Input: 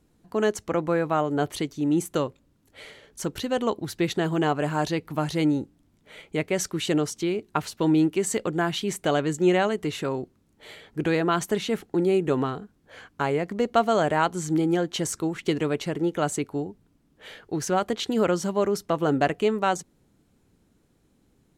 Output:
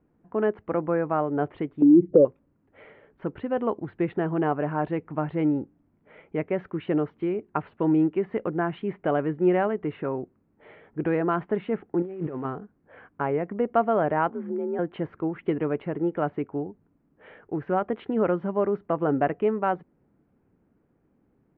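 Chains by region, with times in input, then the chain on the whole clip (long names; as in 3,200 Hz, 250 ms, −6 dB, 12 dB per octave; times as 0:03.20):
0:01.82–0:02.25: expanding power law on the bin magnitudes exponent 2 + low shelf with overshoot 730 Hz +12 dB, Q 3 + downward compressor 2 to 1, threshold −16 dBFS
0:12.02–0:12.45: variable-slope delta modulation 32 kbit/s + compressor whose output falls as the input rises −32 dBFS
0:14.30–0:14.79: Gaussian smoothing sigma 2.9 samples + downward compressor 5 to 1, threshold −25 dBFS + frequency shifter +52 Hz
whole clip: Bessel low-pass filter 1,400 Hz, order 8; low-shelf EQ 77 Hz −10.5 dB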